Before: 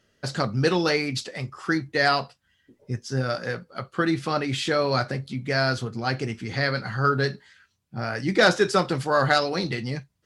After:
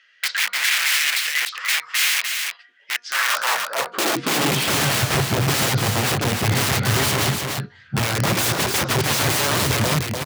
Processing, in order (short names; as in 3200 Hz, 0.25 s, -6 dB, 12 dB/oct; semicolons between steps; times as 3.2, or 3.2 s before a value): harmoniser -3 st -15 dB; LPF 3600 Hz 12 dB/oct; low shelf 87 Hz +4.5 dB; in parallel at +2 dB: compressor 5:1, threshold -30 dBFS, peak gain reduction 15 dB; on the sum: wrapped overs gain 20 dB; high-pass sweep 2000 Hz -> 100 Hz, 3.02–4.75; de-hum 238.7 Hz, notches 6; on a send: echo 0.297 s -5 dB; on the sum: gain +3.5 dB